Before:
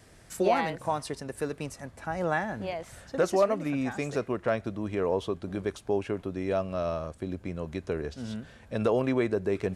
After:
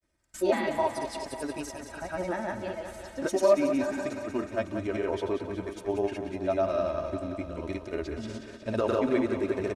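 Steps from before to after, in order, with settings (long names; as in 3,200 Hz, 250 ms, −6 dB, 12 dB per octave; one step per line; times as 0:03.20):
spectral magnitudes quantised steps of 15 dB
noise gate with hold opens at −40 dBFS
granular cloud 100 ms, pitch spread up and down by 0 semitones
comb filter 3.2 ms, depth 59%
feedback echo with a high-pass in the loop 183 ms, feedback 72%, high-pass 190 Hz, level −8.5 dB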